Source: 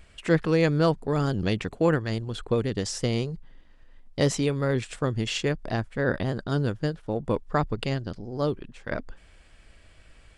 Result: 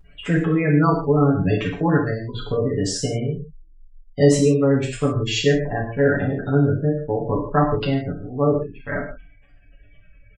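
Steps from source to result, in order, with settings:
gate on every frequency bin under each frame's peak −20 dB strong
comb filter 7 ms, depth 87%
reverb whose tail is shaped and stops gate 190 ms falling, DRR −2.5 dB

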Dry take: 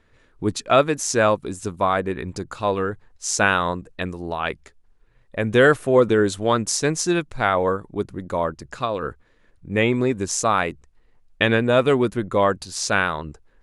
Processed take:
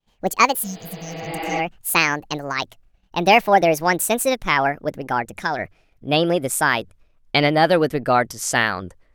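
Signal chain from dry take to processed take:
gliding playback speed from 181% → 117%
healed spectral selection 0:00.66–0:01.56, 220–5,100 Hz both
downward expander −49 dBFS
level +1.5 dB

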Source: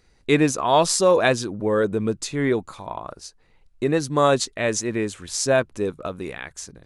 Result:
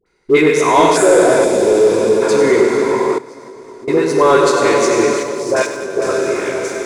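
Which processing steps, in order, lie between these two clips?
low-shelf EQ 150 Hz −11 dB
dense smooth reverb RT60 4.7 s, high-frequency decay 1×, DRR −1.5 dB
0:05.17–0:05.96: output level in coarse steps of 17 dB
on a send: echo with a time of its own for lows and highs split 900 Hz, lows 488 ms, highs 98 ms, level −10 dB
0:00.93–0:01.80: on the sum: healed spectral selection 760–6,500 Hz after
hollow resonant body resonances 400/1,000/1,400/2,100 Hz, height 10 dB, ringing for 20 ms
all-pass dispersion highs, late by 63 ms, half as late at 920 Hz
leveller curve on the samples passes 1
0:01.44–0:02.22: parametric band 1,400 Hz −10 dB 1.4 octaves
0:03.18–0:03.88: downward compressor 8 to 1, threshold −30 dBFS, peak gain reduction 20.5 dB
level −2 dB

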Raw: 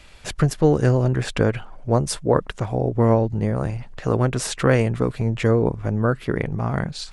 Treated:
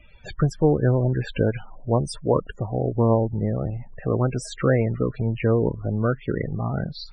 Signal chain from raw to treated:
spectral peaks only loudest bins 32
0:02.16–0:03.95: one half of a high-frequency compander decoder only
level −2 dB

